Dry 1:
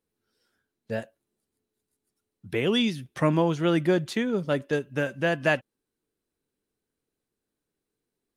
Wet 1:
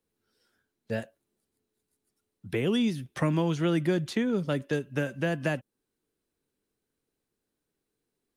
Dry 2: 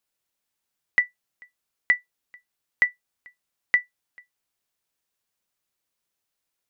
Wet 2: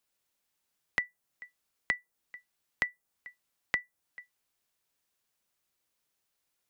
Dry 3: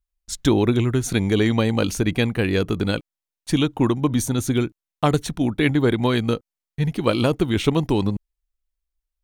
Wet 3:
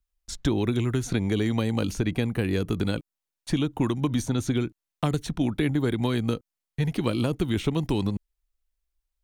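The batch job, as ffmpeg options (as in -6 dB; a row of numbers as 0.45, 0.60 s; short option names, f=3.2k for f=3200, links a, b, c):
-filter_complex "[0:a]acrossover=split=320|1500|6700[a][b][c][d];[a]acompressor=threshold=-25dB:ratio=4[e];[b]acompressor=threshold=-33dB:ratio=4[f];[c]acompressor=threshold=-39dB:ratio=4[g];[d]acompressor=threshold=-50dB:ratio=4[h];[e][f][g][h]amix=inputs=4:normalize=0,volume=1dB"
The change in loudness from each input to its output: -3.0, -10.0, -5.5 LU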